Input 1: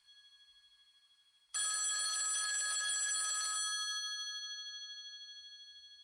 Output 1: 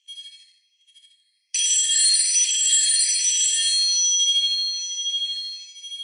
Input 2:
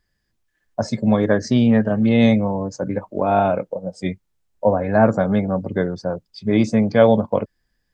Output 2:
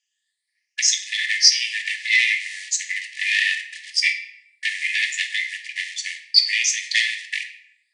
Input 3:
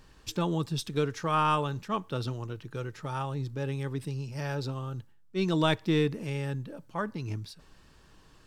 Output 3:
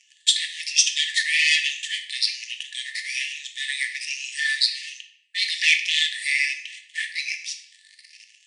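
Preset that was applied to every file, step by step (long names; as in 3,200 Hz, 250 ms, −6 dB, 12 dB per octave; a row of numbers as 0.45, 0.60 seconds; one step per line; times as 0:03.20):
rippled gain that drifts along the octave scale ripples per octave 0.88, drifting +1.2 Hz, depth 16 dB
downward compressor 3 to 1, threshold −17 dBFS
frequency shifter −64 Hz
leveller curve on the samples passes 3
linear-phase brick-wall band-pass 1,700–10,000 Hz
rectangular room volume 220 cubic metres, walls mixed, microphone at 0.63 metres
level +7.5 dB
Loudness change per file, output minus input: +17.5, −1.0, +9.5 LU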